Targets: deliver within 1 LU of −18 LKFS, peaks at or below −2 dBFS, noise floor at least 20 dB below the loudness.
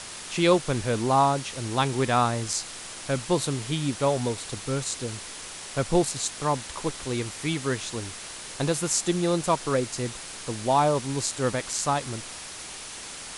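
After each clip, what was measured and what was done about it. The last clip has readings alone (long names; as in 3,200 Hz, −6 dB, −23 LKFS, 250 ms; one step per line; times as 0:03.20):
number of dropouts 1; longest dropout 2.6 ms; background noise floor −40 dBFS; target noise floor −47 dBFS; integrated loudness −27.0 LKFS; sample peak −8.0 dBFS; target loudness −18.0 LKFS
→ repair the gap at 0:06.28, 2.6 ms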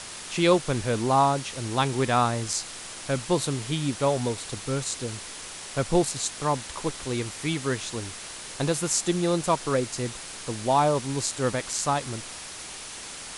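number of dropouts 0; background noise floor −40 dBFS; target noise floor −47 dBFS
→ broadband denoise 7 dB, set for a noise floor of −40 dBFS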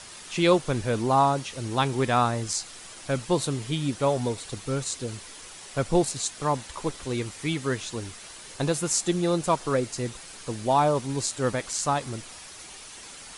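background noise floor −44 dBFS; target noise floor −47 dBFS
→ broadband denoise 6 dB, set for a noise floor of −44 dBFS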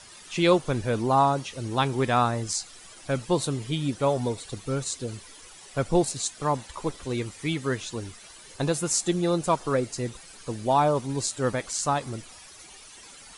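background noise floor −48 dBFS; integrated loudness −27.0 LKFS; sample peak −8.5 dBFS; target loudness −18.0 LKFS
→ level +9 dB
brickwall limiter −2 dBFS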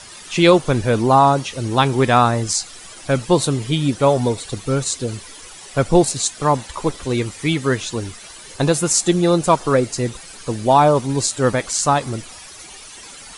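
integrated loudness −18.0 LKFS; sample peak −2.0 dBFS; background noise floor −39 dBFS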